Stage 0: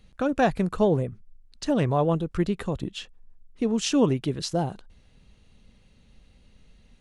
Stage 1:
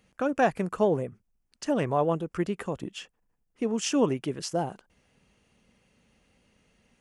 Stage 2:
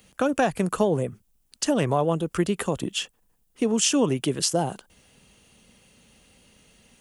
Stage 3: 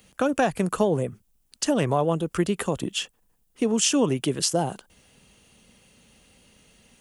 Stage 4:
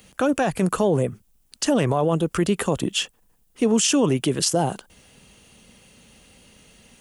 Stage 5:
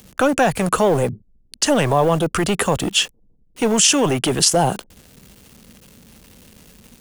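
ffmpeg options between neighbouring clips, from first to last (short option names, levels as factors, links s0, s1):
-af "highpass=f=310:p=1,equalizer=f=3900:w=3.8:g=-12"
-filter_complex "[0:a]aexciter=amount=2.6:drive=3:freq=3000,acrossover=split=150[s0][s1];[s1]acompressor=threshold=0.0447:ratio=3[s2];[s0][s2]amix=inputs=2:normalize=0,volume=2.24"
-af anull
-af "alimiter=limit=0.158:level=0:latency=1:release=17,volume=1.78"
-filter_complex "[0:a]acrossover=split=500[s0][s1];[s0]volume=20,asoftclip=hard,volume=0.0501[s2];[s1]acrusher=bits=7:mix=0:aa=0.000001[s3];[s2][s3]amix=inputs=2:normalize=0,volume=2.24"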